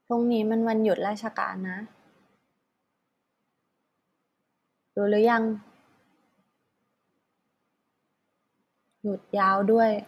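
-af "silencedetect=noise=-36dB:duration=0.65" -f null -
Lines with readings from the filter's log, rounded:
silence_start: 1.85
silence_end: 4.97 | silence_duration: 3.12
silence_start: 5.57
silence_end: 9.04 | silence_duration: 3.47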